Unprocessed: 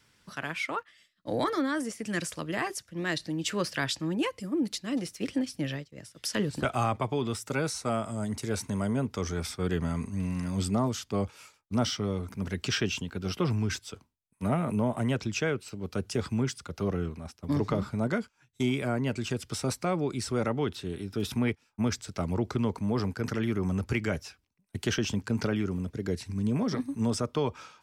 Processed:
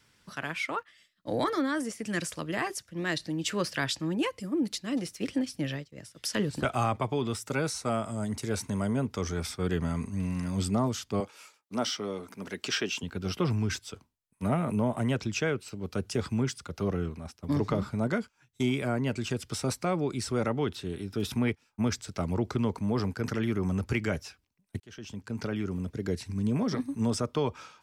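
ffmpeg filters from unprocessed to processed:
-filter_complex "[0:a]asettb=1/sr,asplit=3[a][b][c];[a]atrim=end=11.204[d];[b]atrim=start=11.2:end=13.03,asetpts=PTS-STARTPTS,afade=t=in:d=0.004:c=qsin,afade=t=out:st=1.826:d=0.004:c=qsin,highpass=280[e];[c]atrim=start=13.026[f];[d][e]acrossfade=d=0.004:c1=hsin:c2=qsin[g];[g][f]acrossfade=d=0.004:c1=qsin:c2=hsin,asplit=2[h][i];[h]atrim=end=24.8,asetpts=PTS-STARTPTS,afade=t=out:st=24.796:d=0.004:c=hsin[j];[i]atrim=start=24.8,asetpts=PTS-STARTPTS,afade=t=in:d=1.1[k];[j][k]concat=n=2:v=0:a=1"

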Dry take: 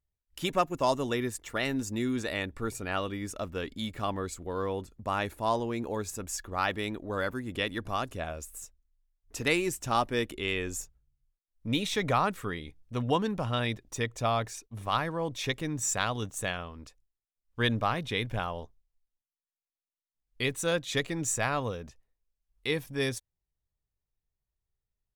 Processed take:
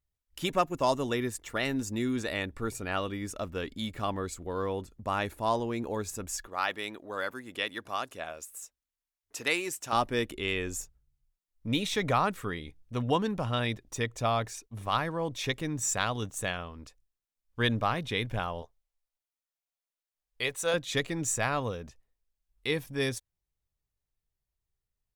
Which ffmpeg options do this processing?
-filter_complex "[0:a]asettb=1/sr,asplit=3[a][b][c];[a]atrim=end=6.474[d];[b]atrim=start=6.47:end=9.93,asetpts=PTS-STARTPTS,afade=t=in:d=0.004:c=qsin,afade=t=out:st=3.456:d=0.004:c=qsin,highpass=f=610:p=1[e];[c]atrim=start=9.926[f];[d][e]acrossfade=d=0.004:c1=hsin:c2=qsin[g];[g][f]acrossfade=d=0.004:c1=qsin:c2=hsin,asettb=1/sr,asplit=3[h][i][j];[h]atrim=end=18.624[k];[i]atrim=start=18.62:end=20.74,asetpts=PTS-STARTPTS,afade=t=in:d=0.004:c=qsin,afade=t=out:st=2.116:d=0.004:c=qsin,lowshelf=f=400:t=q:w=1.5:g=-8.5[l];[j]atrim=start=20.736[m];[k][l]acrossfade=d=0.004:c1=hsin:c2=qsin[n];[n][m]acrossfade=d=0.004:c1=qsin:c2=hsin"

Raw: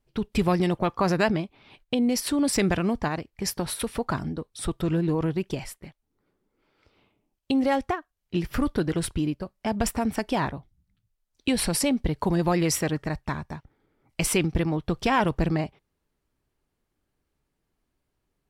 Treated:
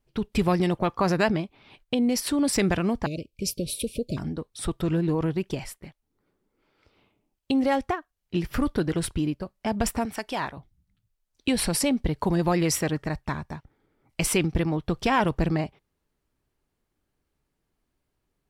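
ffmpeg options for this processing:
-filter_complex "[0:a]asettb=1/sr,asplit=3[a][b][c];[a]atrim=end=3.064[d];[b]atrim=start=3.06:end=4.17,asetpts=PTS-STARTPTS,afade=t=in:d=0.004:c=qsin,afade=t=out:st=1.106:d=0.004:c=qsin,asuperstop=centerf=1200:order=20:qfactor=0.7[e];[c]atrim=start=4.166[f];[d][e]acrossfade=d=0.004:c1=hsin:c2=qsin[g];[g][f]acrossfade=d=0.004:c1=qsin:c2=hsin,asettb=1/sr,asplit=3[h][i][j];[h]atrim=end=10.054[k];[i]atrim=start=10.05:end=10.57,asetpts=PTS-STARTPTS,afade=t=in:d=0.004:c=qsin,afade=t=out:st=0.516:d=0.004:c=qsin,lowshelf=f=460:g=-11[l];[j]atrim=start=10.566[m];[k][l]acrossfade=d=0.004:c1=hsin:c2=qsin[n];[n][m]acrossfade=d=0.004:c1=qsin:c2=hsin"

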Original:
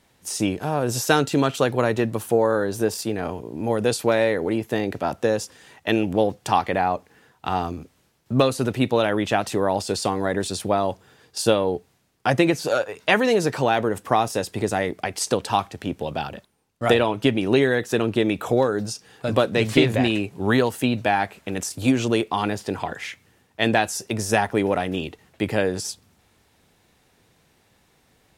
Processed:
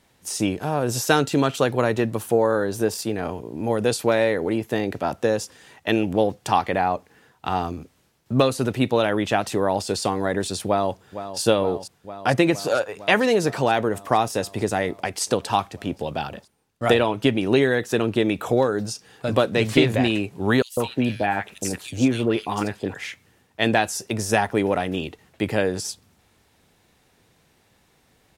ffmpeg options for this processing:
-filter_complex "[0:a]asplit=2[a][b];[b]afade=t=in:st=10.66:d=0.01,afade=t=out:st=11.41:d=0.01,aecho=0:1:460|920|1380|1840|2300|2760|3220|3680|4140|4600|5060|5520:0.266073|0.212858|0.170286|0.136229|0.108983|0.0871866|0.0697493|0.0557994|0.0446396|0.0357116|0.0285693|0.0228555[c];[a][c]amix=inputs=2:normalize=0,asettb=1/sr,asplit=3[d][e][f];[d]atrim=end=20.624[g];[e]atrim=start=20.62:end=22.94,asetpts=PTS-STARTPTS,afade=t=in:d=0.004:c=qsin,afade=t=out:st=2.316:d=0.004:c=qsin,acrossover=split=930|3000[h][i][j];[h]adelay=150[k];[i]adelay=180[l];[k][l][j]amix=inputs=3:normalize=0,atrim=end_sample=102312[m];[f]atrim=start=22.936[n];[g][m]acrossfade=d=0.004:c1=hsin:c2=qsin[o];[o][n]acrossfade=d=0.004:c1=qsin:c2=hsin"

